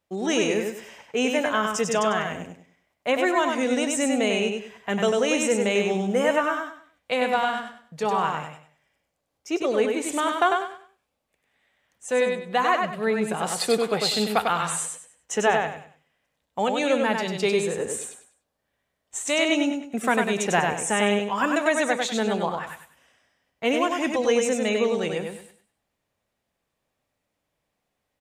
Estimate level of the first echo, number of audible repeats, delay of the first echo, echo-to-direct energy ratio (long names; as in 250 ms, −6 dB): −4.0 dB, 3, 98 ms, −3.5 dB